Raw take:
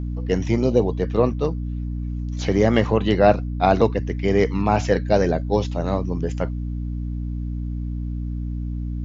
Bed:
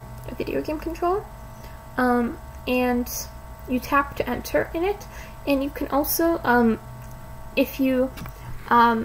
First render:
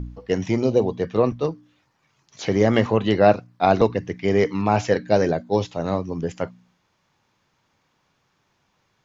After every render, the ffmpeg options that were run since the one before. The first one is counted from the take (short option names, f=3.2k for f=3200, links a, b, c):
-af "bandreject=f=60:t=h:w=4,bandreject=f=120:t=h:w=4,bandreject=f=180:t=h:w=4,bandreject=f=240:t=h:w=4,bandreject=f=300:t=h:w=4"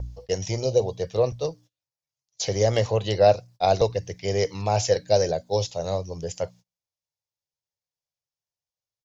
-af "agate=range=-28dB:threshold=-42dB:ratio=16:detection=peak,firequalizer=gain_entry='entry(110,0);entry(240,-18);entry(520,1);entry(1200,-12);entry(5000,9)':delay=0.05:min_phase=1"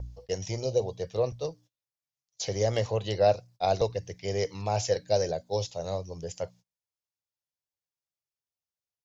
-af "volume=-5.5dB"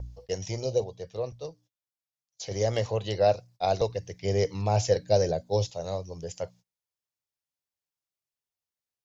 -filter_complex "[0:a]asettb=1/sr,asplit=3[a][b][c];[a]atrim=end=4.214[d];[b]atrim=start=4.21:end=5.71,asetpts=PTS-STARTPTS,afade=t=in:d=0.004:c=qsin,afade=t=out:st=1.496:d=0.004:c=qsin,lowshelf=f=460:g=6.5[e];[c]atrim=start=5.706[f];[d][e]acrossfade=d=0.004:c1=hsin:c2=qsin[g];[g][f]acrossfade=d=0.004:c1=qsin:c2=hsin,asplit=3[h][i][j];[h]atrim=end=0.842[k];[i]atrim=start=0.838:end=2.512,asetpts=PTS-STARTPTS,volume=-5dB[l];[j]atrim=start=2.508[m];[k][l]acrossfade=d=0.004:c1=hsin:c2=hsin[n];[n][m]acrossfade=d=0.004:c1=hsin:c2=hsin"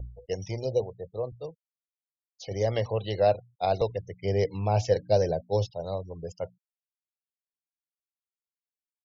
-af "lowpass=4.4k,afftfilt=real='re*gte(hypot(re,im),0.00631)':imag='im*gte(hypot(re,im),0.00631)':win_size=1024:overlap=0.75"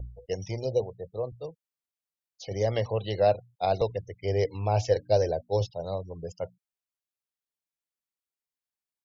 -filter_complex "[0:a]asettb=1/sr,asplit=3[a][b][c];[a]atrim=end=4.044[d];[b]atrim=start=4.04:end=5.61,asetpts=PTS-STARTPTS,afade=t=in:d=0.004:c=qsin,afade=t=out:st=1.566:d=0.004:c=qsin,equalizer=f=180:t=o:w=0.39:g=-11.5[e];[c]atrim=start=5.606[f];[d][e]acrossfade=d=0.004:c1=hsin:c2=qsin[g];[g][f]acrossfade=d=0.004:c1=qsin:c2=hsin"